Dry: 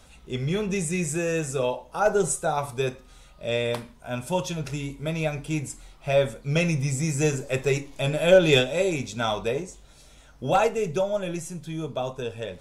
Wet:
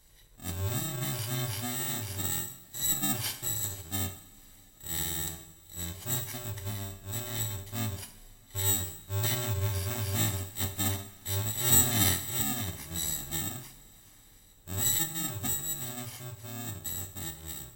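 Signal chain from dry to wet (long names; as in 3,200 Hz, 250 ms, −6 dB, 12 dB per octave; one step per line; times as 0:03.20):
samples in bit-reversed order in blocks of 64 samples
coupled-rooms reverb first 0.39 s, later 4.3 s, from −22 dB, DRR 7.5 dB
speed change −29%
level −7.5 dB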